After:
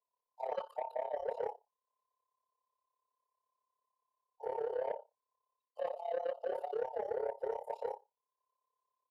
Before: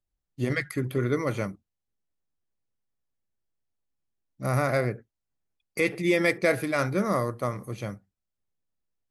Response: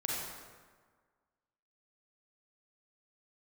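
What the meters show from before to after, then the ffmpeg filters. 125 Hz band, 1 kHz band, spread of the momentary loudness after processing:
below −40 dB, −7.0 dB, 7 LU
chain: -filter_complex "[0:a]afftfilt=real='real(if(between(b,1,1008),(2*floor((b-1)/48)+1)*48-b,b),0)':imag='imag(if(between(b,1,1008),(2*floor((b-1)/48)+1)*48-b,b),0)*if(between(b,1,1008),-1,1)':win_size=2048:overlap=0.75,firequalizer=gain_entry='entry(120,0);entry(280,-26);entry(440,14);entry(770,-5);entry(1900,-28);entry(3900,-4);entry(10000,-3)':delay=0.05:min_phase=1,aecho=1:1:65|130:0.0708|0.0156,acrossover=split=3100[link_01][link_02];[link_02]acompressor=threshold=-57dB:ratio=4:attack=1:release=60[link_03];[link_01][link_03]amix=inputs=2:normalize=0,acrossover=split=590 3100:gain=0.2 1 0.224[link_04][link_05][link_06];[link_04][link_05][link_06]amix=inputs=3:normalize=0,areverse,acompressor=threshold=-34dB:ratio=6,areverse,asoftclip=type=tanh:threshold=-30.5dB,highpass=frequency=72:poles=1,tremolo=f=34:d=0.857,volume=4.5dB"

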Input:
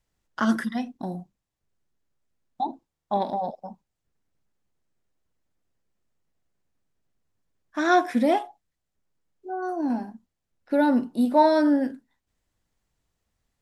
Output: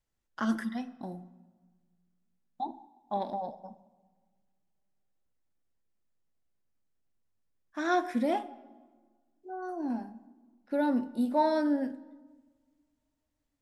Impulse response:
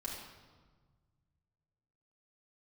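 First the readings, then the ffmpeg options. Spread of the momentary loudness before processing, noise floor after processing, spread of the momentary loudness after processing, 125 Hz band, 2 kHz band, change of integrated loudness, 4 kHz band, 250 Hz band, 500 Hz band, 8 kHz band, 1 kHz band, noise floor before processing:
17 LU, −81 dBFS, 19 LU, can't be measured, −8.5 dB, −7.5 dB, −8.0 dB, −7.0 dB, −7.5 dB, −8.0 dB, −8.0 dB, −82 dBFS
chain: -filter_complex "[0:a]asplit=2[link_01][link_02];[link_02]equalizer=frequency=4100:width_type=o:width=0.32:gain=-5.5[link_03];[1:a]atrim=start_sample=2205[link_04];[link_03][link_04]afir=irnorm=-1:irlink=0,volume=-12dB[link_05];[link_01][link_05]amix=inputs=2:normalize=0,volume=-9dB"

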